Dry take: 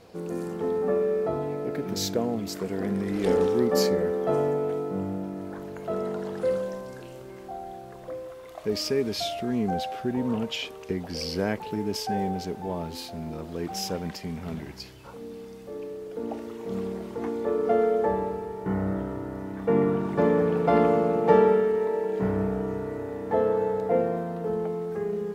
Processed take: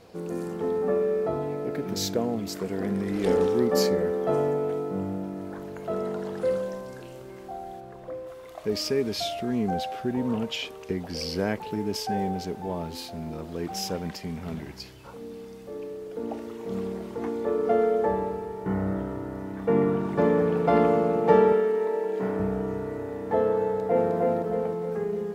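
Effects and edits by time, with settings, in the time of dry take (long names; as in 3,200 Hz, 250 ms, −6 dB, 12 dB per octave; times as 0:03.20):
0:07.80–0:08.27: high-shelf EQ 3,400 Hz −8 dB
0:21.52–0:22.40: high-pass filter 220 Hz
0:23.64–0:24.11: delay throw 310 ms, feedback 50%, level −2.5 dB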